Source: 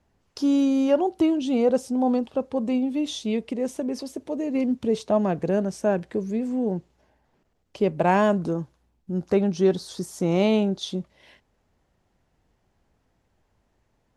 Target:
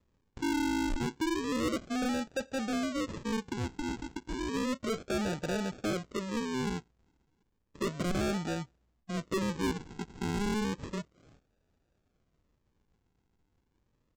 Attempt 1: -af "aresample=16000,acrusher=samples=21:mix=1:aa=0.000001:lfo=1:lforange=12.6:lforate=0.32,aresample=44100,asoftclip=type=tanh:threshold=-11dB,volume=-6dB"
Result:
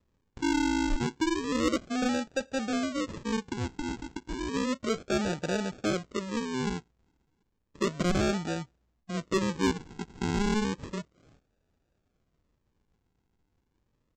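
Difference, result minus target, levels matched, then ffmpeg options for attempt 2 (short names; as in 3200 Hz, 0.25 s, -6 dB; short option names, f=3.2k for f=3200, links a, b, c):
soft clip: distortion -12 dB
-af "aresample=16000,acrusher=samples=21:mix=1:aa=0.000001:lfo=1:lforange=12.6:lforate=0.32,aresample=44100,asoftclip=type=tanh:threshold=-21dB,volume=-6dB"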